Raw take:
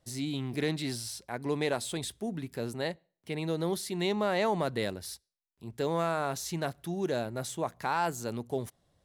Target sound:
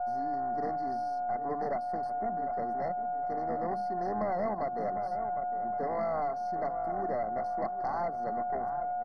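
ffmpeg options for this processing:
ffmpeg -i in.wav -filter_complex "[0:a]bandreject=frequency=50:width_type=h:width=6,bandreject=frequency=100:width_type=h:width=6,bandreject=frequency=150:width_type=h:width=6,bandreject=frequency=200:width_type=h:width=6,acrossover=split=350[link_01][link_02];[link_01]alimiter=level_in=13dB:limit=-24dB:level=0:latency=1,volume=-13dB[link_03];[link_03][link_02]amix=inputs=2:normalize=0,aeval=exprs='val(0)+0.00794*sin(2*PI*720*n/s)':channel_layout=same,asplit=3[link_04][link_05][link_06];[link_04]bandpass=frequency=730:width_type=q:width=8,volume=0dB[link_07];[link_05]bandpass=frequency=1090:width_type=q:width=8,volume=-6dB[link_08];[link_06]bandpass=frequency=2440:width_type=q:width=8,volume=-9dB[link_09];[link_07][link_08][link_09]amix=inputs=3:normalize=0,asplit=2[link_10][link_11];[link_11]adelay=756,lowpass=frequency=1400:poles=1,volume=-13.5dB,asplit=2[link_12][link_13];[link_13]adelay=756,lowpass=frequency=1400:poles=1,volume=0.38,asplit=2[link_14][link_15];[link_15]adelay=756,lowpass=frequency=1400:poles=1,volume=0.38,asplit=2[link_16][link_17];[link_17]adelay=756,lowpass=frequency=1400:poles=1,volume=0.38[link_18];[link_10][link_12][link_14][link_16][link_18]amix=inputs=5:normalize=0,acompressor=threshold=-41dB:ratio=2.5,aeval=exprs='0.0266*(cos(1*acos(clip(val(0)/0.0266,-1,1)))-cos(1*PI/2))+0.00531*(cos(5*acos(clip(val(0)/0.0266,-1,1)))-cos(5*PI/2))+0.00211*(cos(6*acos(clip(val(0)/0.0266,-1,1)))-cos(6*PI/2))':channel_layout=same,equalizer=frequency=210:width_type=o:width=0.84:gain=15,tremolo=f=130:d=0.261,highshelf=frequency=3800:gain=-11,afftfilt=real='re*eq(mod(floor(b*sr/1024/2100),2),0)':imag='im*eq(mod(floor(b*sr/1024/2100),2),0)':win_size=1024:overlap=0.75,volume=8.5dB" out.wav

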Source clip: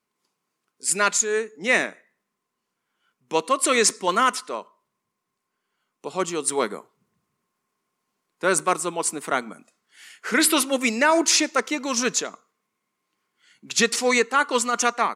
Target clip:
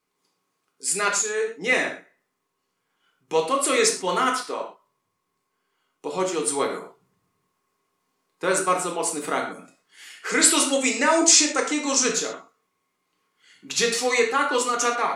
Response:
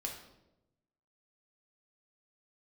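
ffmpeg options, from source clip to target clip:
-filter_complex "[0:a]asplit=2[link_01][link_02];[link_02]acompressor=threshold=-29dB:ratio=6,volume=1.5dB[link_03];[link_01][link_03]amix=inputs=2:normalize=0,asettb=1/sr,asplit=3[link_04][link_05][link_06];[link_04]atrim=end=10.294[link_07];[link_05]atrim=start=10.29:end=12.09,asetpts=PTS-STARTPTS,afade=type=in:duration=0.004:curve=qsin,afade=type=out:start_time=1.796:duration=0.004:curve=qsin,lowpass=frequency=7900:width_type=q:width=3.5[link_08];[link_06]atrim=start=12.086[link_09];[link_07][link_08]acrossfade=duration=0.004:curve1=hsin:curve2=qsin[link_10];[link_10][link_09]acrossfade=duration=0.004:curve1=qsin:curve2=hsin[link_11];[1:a]atrim=start_sample=2205,atrim=end_sample=6174[link_12];[link_11][link_12]afir=irnorm=-1:irlink=0,volume=-3dB"

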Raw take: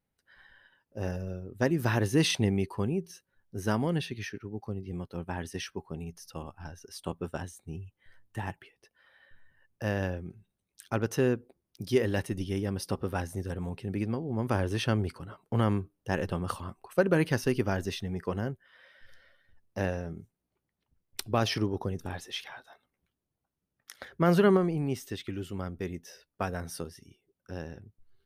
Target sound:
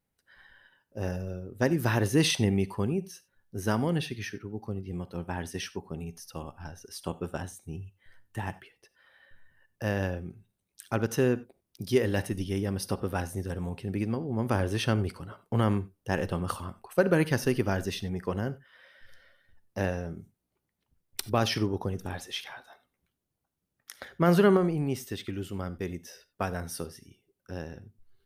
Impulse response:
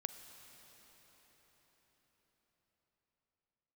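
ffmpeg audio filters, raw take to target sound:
-filter_complex "[0:a]equalizer=frequency=13000:width=0.61:gain=3.5[link_01];[1:a]atrim=start_sample=2205,atrim=end_sample=4410[link_02];[link_01][link_02]afir=irnorm=-1:irlink=0,volume=3.5dB"

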